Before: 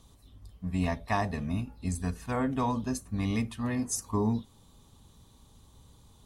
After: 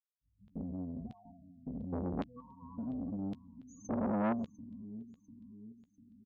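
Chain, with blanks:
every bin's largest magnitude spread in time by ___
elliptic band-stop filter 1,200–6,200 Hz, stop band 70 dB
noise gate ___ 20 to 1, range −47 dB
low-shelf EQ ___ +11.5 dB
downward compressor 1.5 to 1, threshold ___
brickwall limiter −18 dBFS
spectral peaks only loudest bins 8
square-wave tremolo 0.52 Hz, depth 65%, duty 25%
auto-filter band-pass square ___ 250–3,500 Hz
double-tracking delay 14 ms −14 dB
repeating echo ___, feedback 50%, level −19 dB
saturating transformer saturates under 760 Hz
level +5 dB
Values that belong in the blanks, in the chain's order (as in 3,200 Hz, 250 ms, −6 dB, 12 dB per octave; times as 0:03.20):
480 ms, −43 dBFS, 120 Hz, −27 dBFS, 0.9 Hz, 697 ms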